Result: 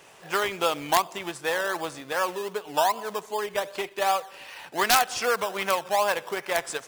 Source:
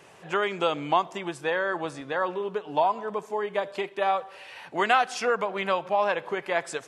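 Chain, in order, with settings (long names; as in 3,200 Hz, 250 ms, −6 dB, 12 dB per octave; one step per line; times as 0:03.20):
in parallel at −7 dB: sample-and-hold swept by an LFO 16×, swing 60% 2.6 Hz
on the sum: high-shelf EQ 3,000 Hz +4.5 dB
wrap-around overflow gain 6.5 dB
low-shelf EQ 490 Hz −8 dB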